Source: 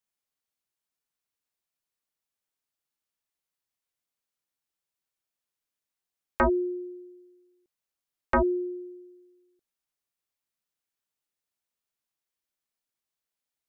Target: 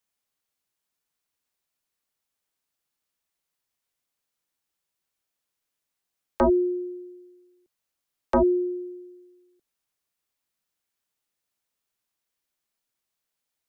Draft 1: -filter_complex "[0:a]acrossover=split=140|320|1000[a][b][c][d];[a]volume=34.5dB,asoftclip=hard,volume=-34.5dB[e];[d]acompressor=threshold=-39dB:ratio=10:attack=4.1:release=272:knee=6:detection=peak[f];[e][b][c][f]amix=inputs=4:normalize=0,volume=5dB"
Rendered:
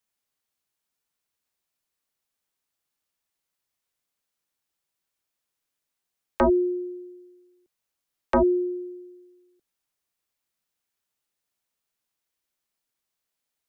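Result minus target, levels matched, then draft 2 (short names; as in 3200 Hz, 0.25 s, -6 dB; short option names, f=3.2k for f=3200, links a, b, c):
compressor: peak gain reduction -10.5 dB
-filter_complex "[0:a]acrossover=split=140|320|1000[a][b][c][d];[a]volume=34.5dB,asoftclip=hard,volume=-34.5dB[e];[d]acompressor=threshold=-50.5dB:ratio=10:attack=4.1:release=272:knee=6:detection=peak[f];[e][b][c][f]amix=inputs=4:normalize=0,volume=5dB"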